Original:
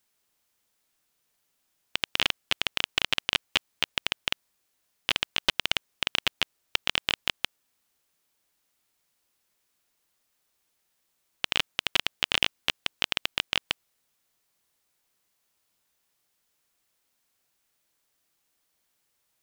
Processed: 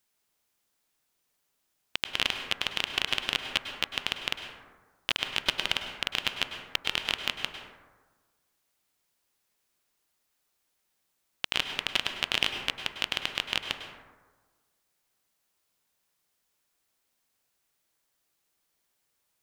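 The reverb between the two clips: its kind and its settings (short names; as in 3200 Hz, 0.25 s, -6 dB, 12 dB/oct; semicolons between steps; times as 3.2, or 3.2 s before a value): plate-style reverb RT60 1.4 s, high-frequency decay 0.35×, pre-delay 90 ms, DRR 5.5 dB; gain -2.5 dB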